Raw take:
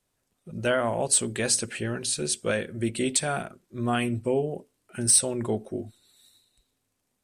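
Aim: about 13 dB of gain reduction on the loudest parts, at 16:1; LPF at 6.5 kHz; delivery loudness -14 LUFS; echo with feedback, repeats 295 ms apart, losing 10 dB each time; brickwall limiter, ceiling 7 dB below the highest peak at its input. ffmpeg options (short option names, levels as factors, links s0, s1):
-af "lowpass=6500,acompressor=threshold=0.02:ratio=16,alimiter=level_in=2:limit=0.0631:level=0:latency=1,volume=0.501,aecho=1:1:295|590|885|1180:0.316|0.101|0.0324|0.0104,volume=21.1"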